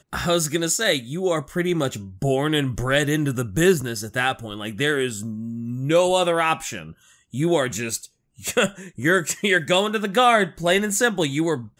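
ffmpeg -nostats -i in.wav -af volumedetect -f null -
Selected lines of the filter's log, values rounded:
mean_volume: -22.3 dB
max_volume: -5.1 dB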